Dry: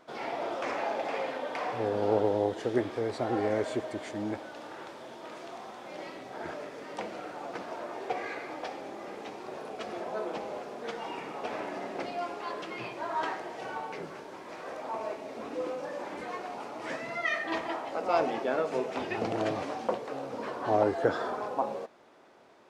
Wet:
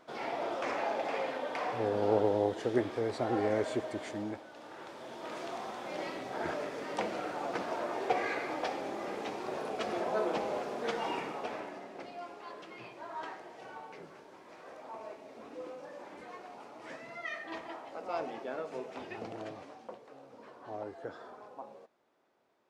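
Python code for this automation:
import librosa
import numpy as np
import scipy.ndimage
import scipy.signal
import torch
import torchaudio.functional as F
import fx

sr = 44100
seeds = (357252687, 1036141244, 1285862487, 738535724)

y = fx.gain(x, sr, db=fx.line((4.12, -1.5), (4.45, -8.0), (5.38, 3.0), (11.14, 3.0), (11.86, -9.5), (19.12, -9.5), (19.85, -16.0)))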